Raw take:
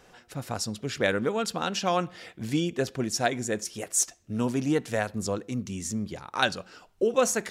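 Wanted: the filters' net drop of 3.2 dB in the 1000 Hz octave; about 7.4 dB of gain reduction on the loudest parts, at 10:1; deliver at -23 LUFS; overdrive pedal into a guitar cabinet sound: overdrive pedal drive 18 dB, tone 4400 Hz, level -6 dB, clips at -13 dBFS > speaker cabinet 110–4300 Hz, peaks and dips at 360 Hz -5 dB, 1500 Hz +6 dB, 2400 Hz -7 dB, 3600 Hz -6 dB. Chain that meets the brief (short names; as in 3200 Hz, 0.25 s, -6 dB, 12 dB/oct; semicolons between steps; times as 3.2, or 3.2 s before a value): bell 1000 Hz -6 dB; compressor 10:1, threshold -27 dBFS; overdrive pedal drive 18 dB, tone 4400 Hz, level -6 dB, clips at -13 dBFS; speaker cabinet 110–4300 Hz, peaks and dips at 360 Hz -5 dB, 1500 Hz +6 dB, 2400 Hz -7 dB, 3600 Hz -6 dB; gain +6.5 dB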